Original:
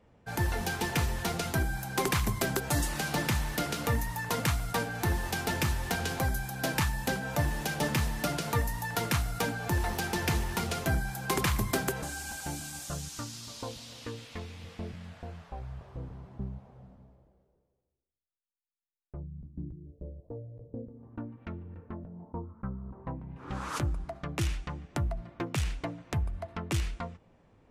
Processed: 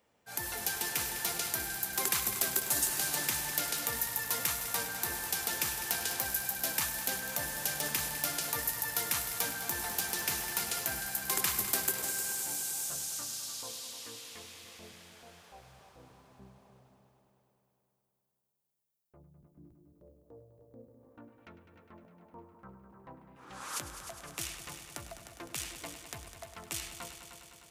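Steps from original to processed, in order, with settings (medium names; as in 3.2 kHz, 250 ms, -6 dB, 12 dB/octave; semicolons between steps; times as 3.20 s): transient shaper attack -4 dB, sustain 0 dB; RIAA curve recording; multi-head delay 102 ms, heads all three, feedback 65%, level -13.5 dB; trim -6 dB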